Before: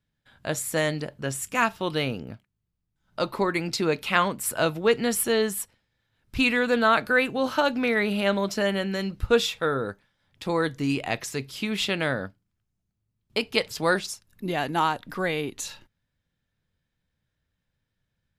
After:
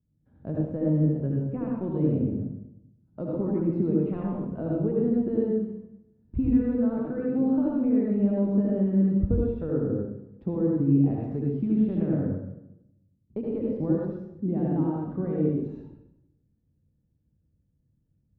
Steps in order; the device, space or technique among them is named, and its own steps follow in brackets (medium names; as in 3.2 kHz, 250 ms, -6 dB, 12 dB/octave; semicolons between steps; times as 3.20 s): high-pass 46 Hz; de-esser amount 70%; peaking EQ 120 Hz -6 dB 0.42 oct; television next door (compression 4:1, threshold -27 dBFS, peak gain reduction 11 dB; low-pass 260 Hz 12 dB/octave; reverberation RT60 0.85 s, pre-delay 69 ms, DRR -3 dB); trim +7 dB